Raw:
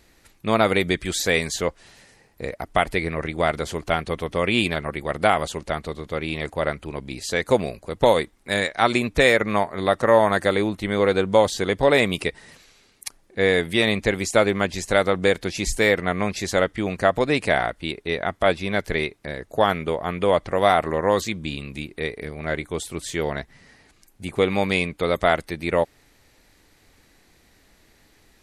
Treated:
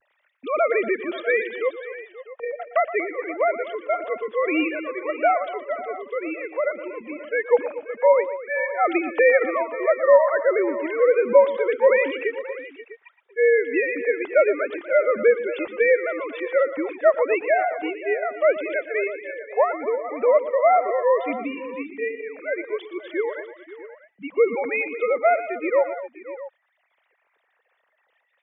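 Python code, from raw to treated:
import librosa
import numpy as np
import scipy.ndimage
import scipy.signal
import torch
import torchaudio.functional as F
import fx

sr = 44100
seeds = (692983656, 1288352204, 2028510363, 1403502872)

y = fx.sine_speech(x, sr)
y = fx.vibrato(y, sr, rate_hz=0.64, depth_cents=37.0)
y = fx.echo_multitap(y, sr, ms=(117, 237, 531, 649), db=(-14.0, -15.5, -16.5, -17.0))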